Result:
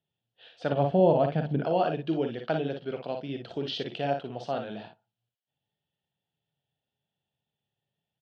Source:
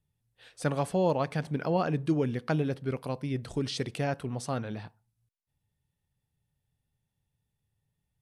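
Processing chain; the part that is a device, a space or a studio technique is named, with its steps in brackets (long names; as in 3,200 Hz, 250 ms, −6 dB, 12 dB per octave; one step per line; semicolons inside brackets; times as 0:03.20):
0:00.72–0:01.64: RIAA equalisation playback
kitchen radio (loudspeaker in its box 220–4,100 Hz, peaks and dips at 260 Hz −3 dB, 680 Hz +7 dB, 1,100 Hz −8 dB, 2,100 Hz −7 dB, 3,100 Hz +8 dB)
ambience of single reflections 43 ms −9.5 dB, 57 ms −7 dB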